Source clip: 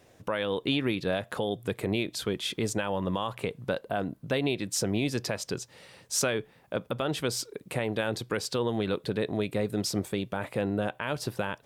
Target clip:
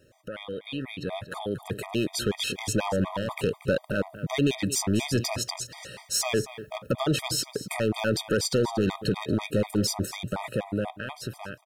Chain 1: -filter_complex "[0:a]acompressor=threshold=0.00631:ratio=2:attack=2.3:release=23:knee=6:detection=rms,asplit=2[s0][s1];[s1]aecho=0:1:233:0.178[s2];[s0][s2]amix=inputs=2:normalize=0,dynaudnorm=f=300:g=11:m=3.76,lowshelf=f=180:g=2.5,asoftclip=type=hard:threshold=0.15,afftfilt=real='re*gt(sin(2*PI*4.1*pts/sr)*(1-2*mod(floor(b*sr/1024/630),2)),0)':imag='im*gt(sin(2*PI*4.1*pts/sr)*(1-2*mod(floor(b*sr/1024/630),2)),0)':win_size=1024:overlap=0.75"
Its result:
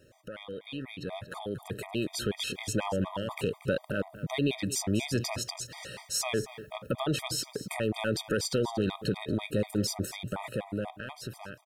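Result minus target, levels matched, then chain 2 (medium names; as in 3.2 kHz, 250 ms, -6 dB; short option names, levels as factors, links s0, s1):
compression: peak gain reduction +5 dB
-filter_complex "[0:a]acompressor=threshold=0.02:ratio=2:attack=2.3:release=23:knee=6:detection=rms,asplit=2[s0][s1];[s1]aecho=0:1:233:0.178[s2];[s0][s2]amix=inputs=2:normalize=0,dynaudnorm=f=300:g=11:m=3.76,lowshelf=f=180:g=2.5,asoftclip=type=hard:threshold=0.15,afftfilt=real='re*gt(sin(2*PI*4.1*pts/sr)*(1-2*mod(floor(b*sr/1024/630),2)),0)':imag='im*gt(sin(2*PI*4.1*pts/sr)*(1-2*mod(floor(b*sr/1024/630),2)),0)':win_size=1024:overlap=0.75"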